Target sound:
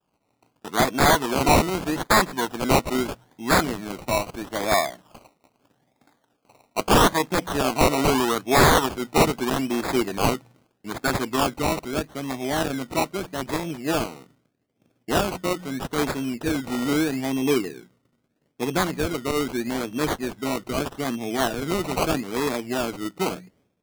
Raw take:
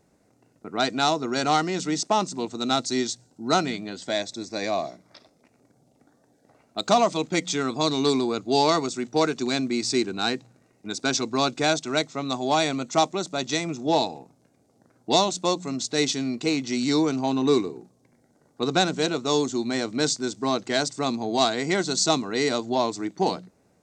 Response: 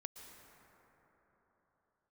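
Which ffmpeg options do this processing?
-af "agate=range=0.0224:threshold=0.00178:ratio=3:detection=peak,asetnsamples=n=441:p=0,asendcmd='10.33 equalizer g 4.5;11.56 equalizer g -9',equalizer=f=1000:w=1.6:g=13,acrusher=samples=21:mix=1:aa=0.000001:lfo=1:lforange=12.6:lforate=0.79,aeval=exprs='(mod(3.16*val(0)+1,2)-1)/3.16':c=same"

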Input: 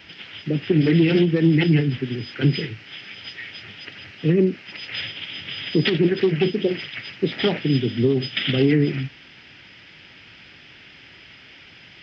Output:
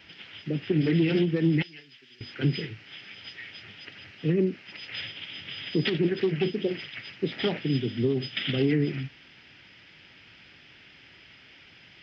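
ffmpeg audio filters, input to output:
-filter_complex "[0:a]asettb=1/sr,asplit=3[s0][s1][s2];[s0]atrim=end=1.624[s3];[s1]atrim=start=1.62:end=2.21,asetpts=PTS-STARTPTS,afade=t=in:d=0.004:c=qsin,afade=t=out:st=0.586:d=0.004:c=qsin,aderivative[s4];[s2]atrim=start=2.206[s5];[s3][s4]acrossfade=d=0.004:c1=hsin:c2=qsin[s6];[s6][s5]acrossfade=d=0.004:c1=qsin:c2=hsin,volume=0.473"

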